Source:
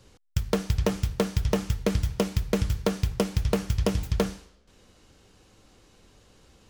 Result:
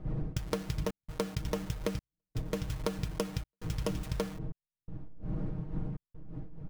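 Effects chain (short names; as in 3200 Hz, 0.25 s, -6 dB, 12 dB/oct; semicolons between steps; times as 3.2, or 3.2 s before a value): level-crossing sampler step -36 dBFS; wind noise 150 Hz -33 dBFS; comb 6.4 ms, depth 67%; compressor, threshold -30 dBFS, peak gain reduction 15.5 dB; step gate "xxxxx.xxxxx..x" 83 bpm -60 dB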